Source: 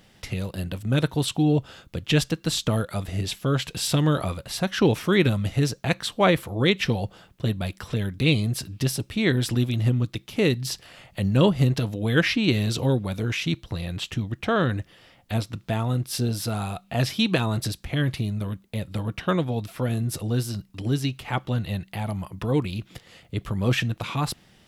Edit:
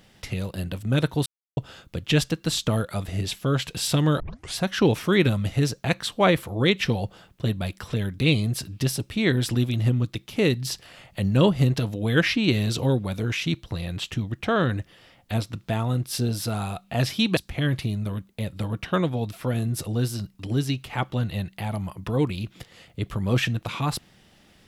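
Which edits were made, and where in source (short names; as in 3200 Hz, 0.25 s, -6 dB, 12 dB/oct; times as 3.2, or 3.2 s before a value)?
1.26–1.57 mute
4.2 tape start 0.36 s
17.37–17.72 cut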